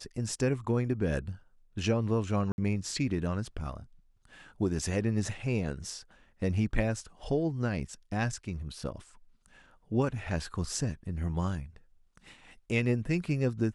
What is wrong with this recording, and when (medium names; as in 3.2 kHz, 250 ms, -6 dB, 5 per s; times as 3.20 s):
2.52–2.58 s: dropout 61 ms